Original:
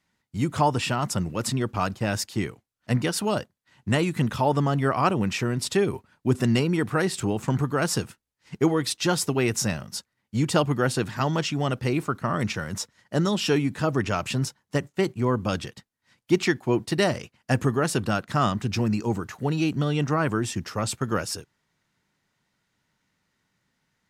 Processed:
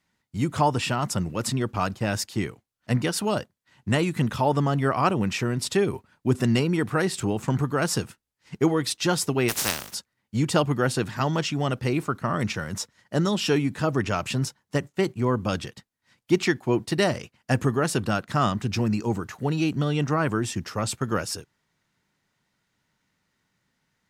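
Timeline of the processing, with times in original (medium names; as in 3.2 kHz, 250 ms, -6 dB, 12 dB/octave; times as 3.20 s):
9.48–9.93 s: spectral contrast reduction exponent 0.25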